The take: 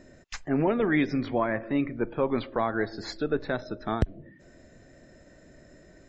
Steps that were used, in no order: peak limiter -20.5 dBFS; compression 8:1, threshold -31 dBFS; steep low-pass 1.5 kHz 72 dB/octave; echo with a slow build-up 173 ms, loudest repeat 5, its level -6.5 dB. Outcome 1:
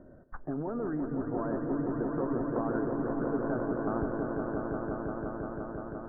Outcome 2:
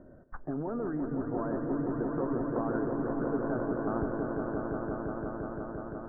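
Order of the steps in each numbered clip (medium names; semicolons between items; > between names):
steep low-pass > peak limiter > compression > echo with a slow build-up; peak limiter > steep low-pass > compression > echo with a slow build-up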